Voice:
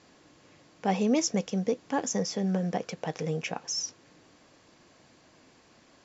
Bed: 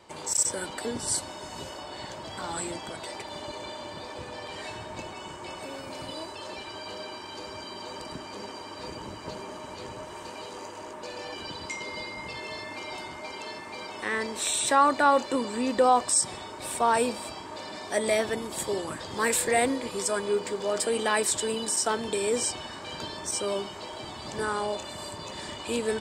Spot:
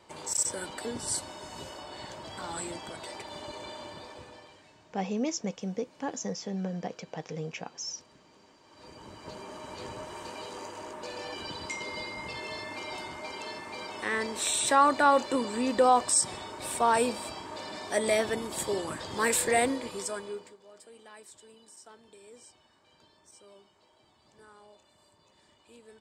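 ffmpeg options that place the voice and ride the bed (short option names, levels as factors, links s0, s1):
-filter_complex "[0:a]adelay=4100,volume=0.531[s0];[1:a]volume=7.08,afade=t=out:st=3.83:d=0.79:silence=0.125893,afade=t=in:st=8.62:d=1.25:silence=0.0944061,afade=t=out:st=19.55:d=1.02:silence=0.0595662[s1];[s0][s1]amix=inputs=2:normalize=0"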